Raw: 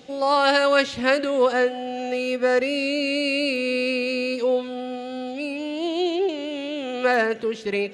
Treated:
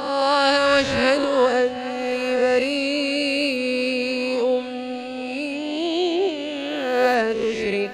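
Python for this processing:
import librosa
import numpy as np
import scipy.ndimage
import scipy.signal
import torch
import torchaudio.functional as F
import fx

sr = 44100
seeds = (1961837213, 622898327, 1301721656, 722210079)

p1 = fx.spec_swells(x, sr, rise_s=1.23)
p2 = fx.low_shelf(p1, sr, hz=88.0, db=12.0)
p3 = p2 + fx.echo_feedback(p2, sr, ms=786, feedback_pct=60, wet_db=-19, dry=0)
y = fx.dynamic_eq(p3, sr, hz=1700.0, q=1.3, threshold_db=-30.0, ratio=4.0, max_db=-4)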